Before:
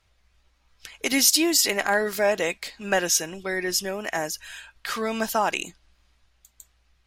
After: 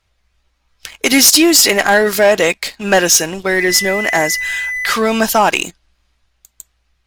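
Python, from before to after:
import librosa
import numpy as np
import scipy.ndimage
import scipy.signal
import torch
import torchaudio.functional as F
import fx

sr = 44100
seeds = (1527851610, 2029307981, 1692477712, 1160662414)

y = fx.dmg_tone(x, sr, hz=2000.0, level_db=-31.0, at=(3.57, 4.92), fade=0.02)
y = fx.leveller(y, sr, passes=2)
y = y * librosa.db_to_amplitude(5.5)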